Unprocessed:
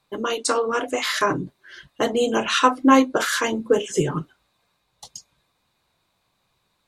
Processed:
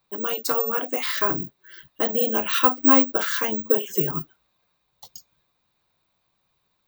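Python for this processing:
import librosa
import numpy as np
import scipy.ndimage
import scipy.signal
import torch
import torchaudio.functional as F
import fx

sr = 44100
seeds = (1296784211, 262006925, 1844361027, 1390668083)

y = fx.block_float(x, sr, bits=7)
y = scipy.signal.sosfilt(scipy.signal.butter(2, 7300.0, 'lowpass', fs=sr, output='sos'), y)
y = (np.kron(scipy.signal.resample_poly(y, 1, 2), np.eye(2)[0]) * 2)[:len(y)]
y = y * librosa.db_to_amplitude(-4.5)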